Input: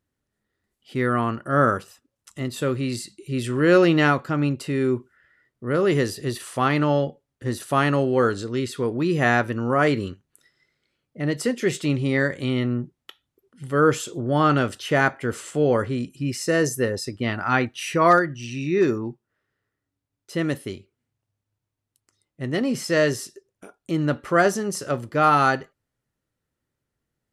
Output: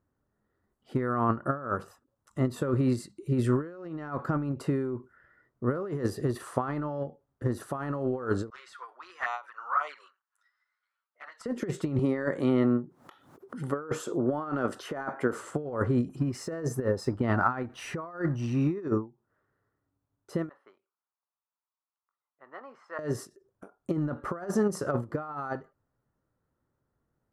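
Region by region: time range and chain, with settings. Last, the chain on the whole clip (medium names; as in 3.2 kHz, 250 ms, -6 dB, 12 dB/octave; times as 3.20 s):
8.50–11.46 s: high-pass 1.1 kHz 24 dB/octave + touch-sensitive flanger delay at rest 10.5 ms, full sweep at -20.5 dBFS + distance through air 67 m
11.99–15.38 s: high-pass 200 Hz + upward compressor, threshold -29 dBFS
16.09–18.81 s: companding laws mixed up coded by mu + treble shelf 9.6 kHz -8.5 dB
20.49–22.99 s: de-esser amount 30% + ladder band-pass 1.3 kHz, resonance 40%
whole clip: compressor with a negative ratio -25 dBFS, ratio -0.5; resonant high shelf 1.8 kHz -12.5 dB, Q 1.5; endings held to a fixed fall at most 230 dB/s; trim -2 dB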